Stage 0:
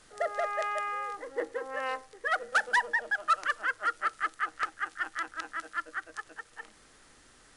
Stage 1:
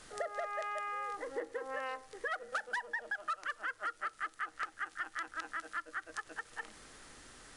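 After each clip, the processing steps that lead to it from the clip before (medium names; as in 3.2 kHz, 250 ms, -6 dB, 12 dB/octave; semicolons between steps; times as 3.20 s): compression 4:1, threshold -41 dBFS, peak gain reduction 17 dB; trim +3.5 dB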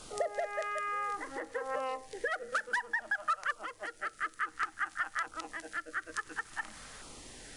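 dynamic bell 3.4 kHz, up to -4 dB, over -53 dBFS, Q 1; LFO notch saw down 0.57 Hz 300–1900 Hz; trim +6.5 dB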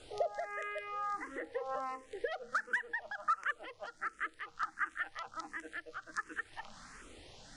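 distance through air 67 m; barber-pole phaser +1.4 Hz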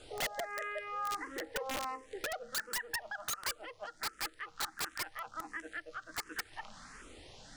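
integer overflow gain 30.5 dB; trim +1 dB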